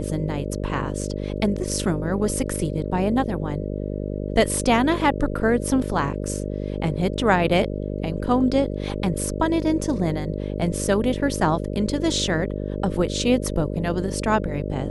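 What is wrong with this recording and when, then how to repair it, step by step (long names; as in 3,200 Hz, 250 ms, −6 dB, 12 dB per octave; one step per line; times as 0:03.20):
mains buzz 50 Hz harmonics 12 −28 dBFS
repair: hum removal 50 Hz, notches 12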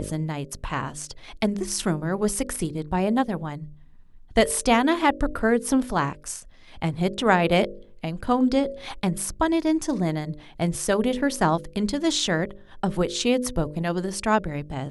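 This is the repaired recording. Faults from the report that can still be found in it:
none of them is left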